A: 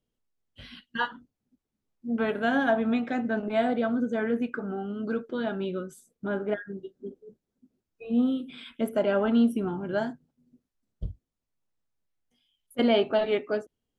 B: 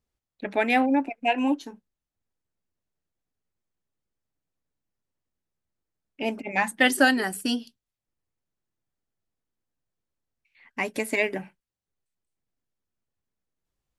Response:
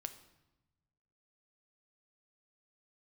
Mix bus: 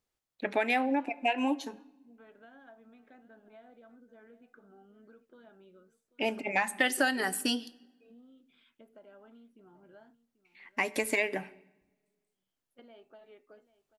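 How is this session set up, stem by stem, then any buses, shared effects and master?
-19.5 dB, 0.00 s, no send, echo send -17 dB, low-pass 3.2 kHz 6 dB/octave; compression 6:1, threshold -31 dBFS, peak gain reduction 12.5 dB
-1.5 dB, 0.00 s, send -3.5 dB, no echo send, none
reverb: on, RT60 1.0 s, pre-delay 6 ms
echo: delay 788 ms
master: bass shelf 200 Hz -11.5 dB; compression 4:1, threshold -25 dBFS, peak gain reduction 10 dB

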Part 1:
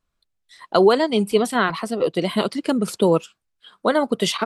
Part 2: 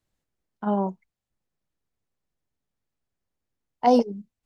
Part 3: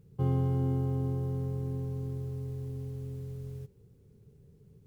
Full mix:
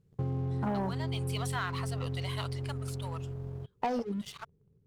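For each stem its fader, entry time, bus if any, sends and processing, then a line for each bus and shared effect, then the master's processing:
-13.5 dB, 0.00 s, no send, high-pass 800 Hz 24 dB/octave; auto duck -16 dB, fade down 1.95 s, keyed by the second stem
-1.5 dB, 0.00 s, no send, compression 16:1, threshold -20 dBFS, peak gain reduction 8 dB
-5.5 dB, 0.00 s, no send, low-pass 1.5 kHz 6 dB/octave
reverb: none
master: waveshaping leveller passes 2; compression 6:1, threshold -30 dBFS, peak gain reduction 11 dB

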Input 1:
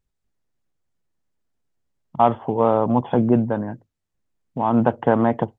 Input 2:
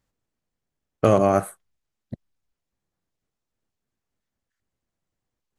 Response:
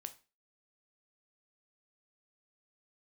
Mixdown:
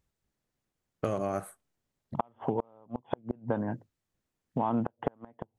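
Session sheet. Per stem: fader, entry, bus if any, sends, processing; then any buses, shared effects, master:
0.0 dB, 0.00 s, no send, high-pass 48 Hz 6 dB/octave
-9.0 dB, 0.00 s, send -16.5 dB, none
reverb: on, RT60 0.30 s, pre-delay 7 ms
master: inverted gate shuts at -8 dBFS, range -37 dB; compression 4:1, threshold -27 dBFS, peak gain reduction 12 dB

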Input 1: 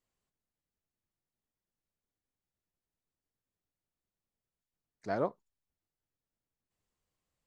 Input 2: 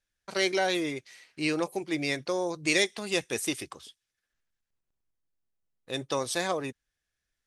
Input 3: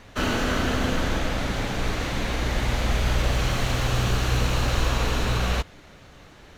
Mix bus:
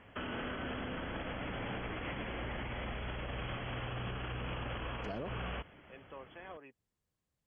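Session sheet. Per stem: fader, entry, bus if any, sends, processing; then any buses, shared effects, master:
-3.5 dB, 0.00 s, no bus, no send, bass shelf 260 Hz +11.5 dB
-17.0 dB, 0.00 s, bus A, no send, high-pass 370 Hz 6 dB/octave; peak limiter -19 dBFS, peak gain reduction 8.5 dB
-8.0 dB, 0.00 s, bus A, no send, none
bus A: 0.0 dB, brick-wall FIR low-pass 3.4 kHz; peak limiter -28 dBFS, peak gain reduction 9 dB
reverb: none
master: high-pass 88 Hz 6 dB/octave; peak limiter -31 dBFS, peak gain reduction 11.5 dB

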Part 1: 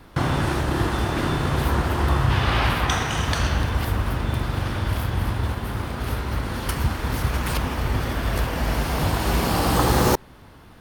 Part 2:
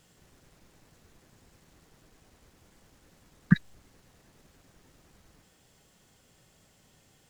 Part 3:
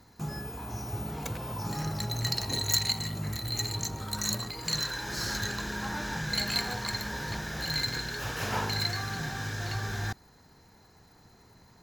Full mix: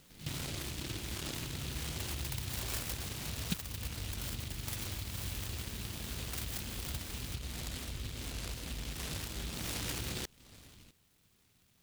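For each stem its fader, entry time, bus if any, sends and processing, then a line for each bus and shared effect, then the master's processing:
-10.0 dB, 0.10 s, bus A, no send, low-pass 1.1 kHz 24 dB/octave
+1.5 dB, 0.00 s, bus A, no send, none
-14.0 dB, 0.00 s, muted 7.36–9.56 s, no bus, no send, peaking EQ 4.8 kHz +11.5 dB 0.61 oct; compression 2:1, threshold -29 dBFS, peak gain reduction 7.5 dB
bus A: 0.0 dB, LFO low-pass sine 1.4 Hz 670–3600 Hz; compression 3:1, threshold -40 dBFS, peak gain reduction 20.5 dB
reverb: none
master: delay time shaken by noise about 3.2 kHz, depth 0.42 ms

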